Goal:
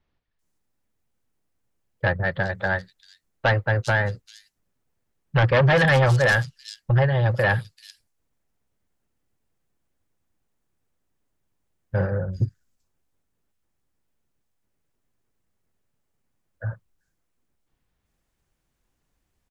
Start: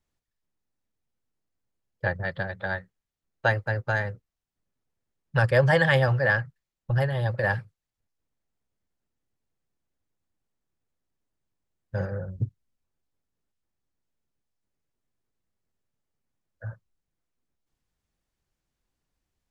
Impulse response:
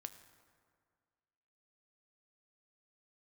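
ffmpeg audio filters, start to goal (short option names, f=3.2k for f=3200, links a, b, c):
-filter_complex "[0:a]aeval=exprs='0.376*(cos(1*acos(clip(val(0)/0.376,-1,1)))-cos(1*PI/2))+0.15*(cos(5*acos(clip(val(0)/0.376,-1,1)))-cos(5*PI/2))':c=same,acrossover=split=4500[a][b];[b]adelay=390[c];[a][c]amix=inputs=2:normalize=0,volume=-2.5dB"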